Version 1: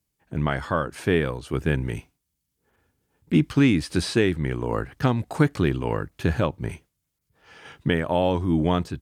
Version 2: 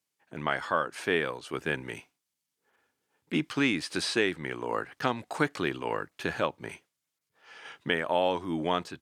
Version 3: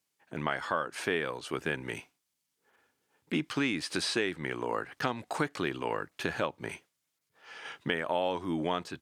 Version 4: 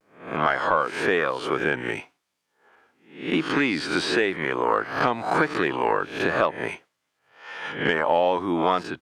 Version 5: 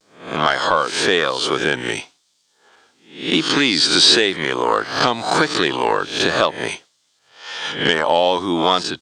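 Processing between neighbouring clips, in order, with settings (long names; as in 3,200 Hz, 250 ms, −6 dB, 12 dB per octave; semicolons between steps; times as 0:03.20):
meter weighting curve A; level −1.5 dB
downward compressor 2 to 1, threshold −33 dBFS, peak gain reduction 8 dB; level +2.5 dB
peak hold with a rise ahead of every peak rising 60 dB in 0.47 s; mid-hump overdrive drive 11 dB, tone 1,100 Hz, clips at −11 dBFS; pitch vibrato 0.96 Hz 71 cents; level +7.5 dB
flat-topped bell 5,300 Hz +14.5 dB; level +4.5 dB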